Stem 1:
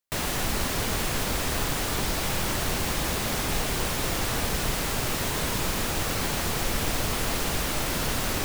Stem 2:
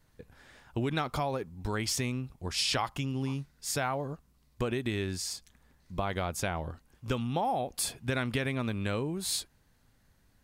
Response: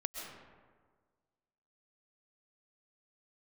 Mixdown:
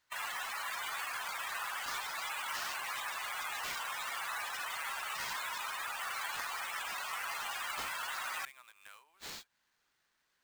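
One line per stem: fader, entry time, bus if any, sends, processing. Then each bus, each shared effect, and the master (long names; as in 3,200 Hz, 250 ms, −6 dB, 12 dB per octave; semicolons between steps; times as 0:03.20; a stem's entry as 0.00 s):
−1.5 dB, 0.00 s, no send, spectral peaks only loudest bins 64
−4.0 dB, 0.00 s, no send, downward compressor 12 to 1, threshold −38 dBFS, peak gain reduction 13.5 dB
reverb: not used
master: high-pass filter 1,000 Hz 24 dB per octave; sample-rate reduction 11,000 Hz, jitter 20%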